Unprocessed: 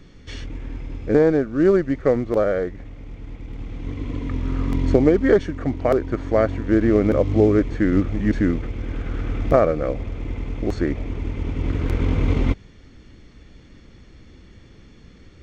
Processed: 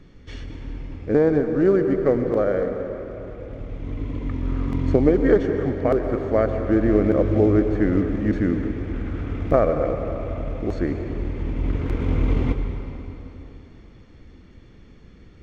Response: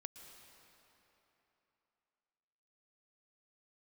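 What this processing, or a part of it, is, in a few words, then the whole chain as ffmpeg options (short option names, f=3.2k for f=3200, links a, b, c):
swimming-pool hall: -filter_complex "[1:a]atrim=start_sample=2205[a];[0:a][a]afir=irnorm=-1:irlink=0,highshelf=f=3.2k:g=-8,volume=4dB"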